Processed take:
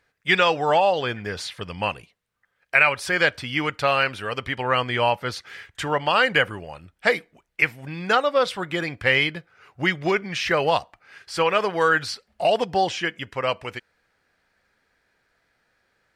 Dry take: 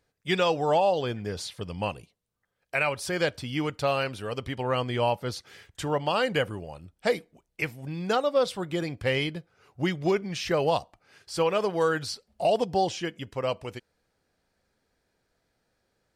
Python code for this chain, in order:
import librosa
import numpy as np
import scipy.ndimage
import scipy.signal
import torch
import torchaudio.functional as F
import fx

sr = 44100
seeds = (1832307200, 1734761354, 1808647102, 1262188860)

y = fx.peak_eq(x, sr, hz=1800.0, db=12.5, octaves=1.9)